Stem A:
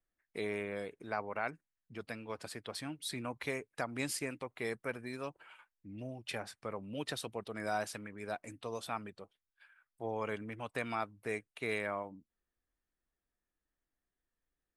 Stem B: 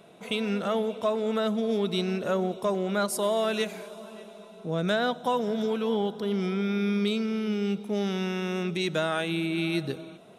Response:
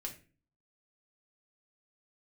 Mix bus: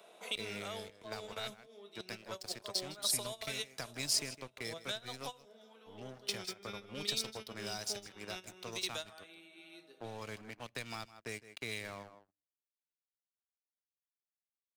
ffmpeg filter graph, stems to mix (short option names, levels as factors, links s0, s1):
-filter_complex "[0:a]equalizer=f=5300:t=o:w=1:g=13,aeval=exprs='sgn(val(0))*max(abs(val(0))-0.00501,0)':c=same,dynaudnorm=f=290:g=3:m=1.68,volume=0.668,asplit=4[s0][s1][s2][s3];[s1]volume=0.0631[s4];[s2]volume=0.141[s5];[1:a]highpass=620,equalizer=f=1700:w=0.66:g=-3.5,volume=0.891,asplit=2[s6][s7];[s7]volume=0.119[s8];[s3]apad=whole_len=457806[s9];[s6][s9]sidechaingate=range=0.0224:threshold=0.00891:ratio=16:detection=peak[s10];[2:a]atrim=start_sample=2205[s11];[s4][s8]amix=inputs=2:normalize=0[s12];[s12][s11]afir=irnorm=-1:irlink=0[s13];[s5]aecho=0:1:158:1[s14];[s0][s10][s13][s14]amix=inputs=4:normalize=0,acrossover=split=160|3000[s15][s16][s17];[s16]acompressor=threshold=0.00708:ratio=6[s18];[s15][s18][s17]amix=inputs=3:normalize=0"